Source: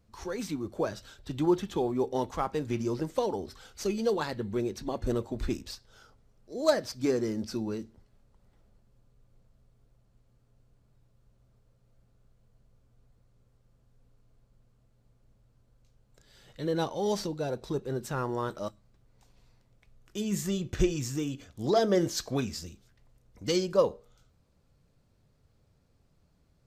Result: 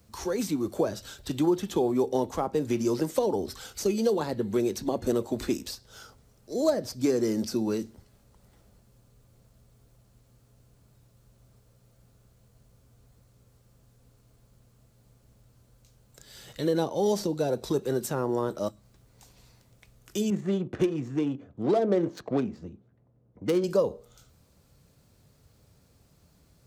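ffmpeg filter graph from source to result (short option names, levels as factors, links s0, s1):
-filter_complex "[0:a]asettb=1/sr,asplit=3[s0][s1][s2];[s0]atrim=end=20.304[s3];[s1]atrim=start=20.3:end=23.64,asetpts=PTS-STARTPTS,afade=t=in:d=0.004:c=qsin,afade=t=out:st=3.336:d=0.004:c=qsin,highpass=120,equalizer=f=5100:w=7.8:g=-7.5,adynamicsmooth=sensitivity=2.5:basefreq=710[s4];[s2]atrim=start=23.636[s5];[s3][s4]acrossfade=d=0.004:c1=hsin:c2=qsin[s6];[s6][s5]acrossfade=d=0.004:c1=qsin:c2=hsin,acrossover=split=190|770[s7][s8][s9];[s7]acompressor=threshold=0.00398:ratio=4[s10];[s8]acompressor=threshold=0.0355:ratio=4[s11];[s9]acompressor=threshold=0.00355:ratio=4[s12];[s10][s11][s12]amix=inputs=3:normalize=0,highpass=46,highshelf=f=5900:g=11.5,volume=2.24"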